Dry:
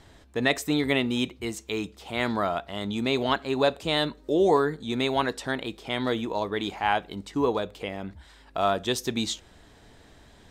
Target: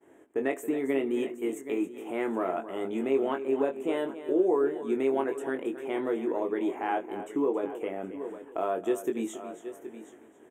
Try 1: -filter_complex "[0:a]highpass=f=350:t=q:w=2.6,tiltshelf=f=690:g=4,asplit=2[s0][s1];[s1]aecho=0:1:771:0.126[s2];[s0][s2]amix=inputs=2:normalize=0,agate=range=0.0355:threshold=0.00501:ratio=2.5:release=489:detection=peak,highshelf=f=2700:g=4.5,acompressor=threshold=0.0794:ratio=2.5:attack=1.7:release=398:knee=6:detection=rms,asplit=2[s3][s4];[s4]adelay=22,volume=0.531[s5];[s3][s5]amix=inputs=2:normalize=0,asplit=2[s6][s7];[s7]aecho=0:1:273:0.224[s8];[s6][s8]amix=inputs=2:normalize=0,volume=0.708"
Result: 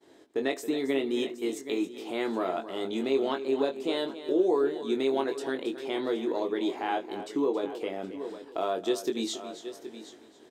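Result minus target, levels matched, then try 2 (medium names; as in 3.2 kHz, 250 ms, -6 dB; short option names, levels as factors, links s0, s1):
4 kHz band +12.0 dB
-filter_complex "[0:a]highpass=f=350:t=q:w=2.6,tiltshelf=f=690:g=4,asplit=2[s0][s1];[s1]aecho=0:1:771:0.126[s2];[s0][s2]amix=inputs=2:normalize=0,agate=range=0.0355:threshold=0.00501:ratio=2.5:release=489:detection=peak,asuperstop=centerf=4500:order=4:qfactor=0.86,highshelf=f=2700:g=4.5,acompressor=threshold=0.0794:ratio=2.5:attack=1.7:release=398:knee=6:detection=rms,asplit=2[s3][s4];[s4]adelay=22,volume=0.531[s5];[s3][s5]amix=inputs=2:normalize=0,asplit=2[s6][s7];[s7]aecho=0:1:273:0.224[s8];[s6][s8]amix=inputs=2:normalize=0,volume=0.708"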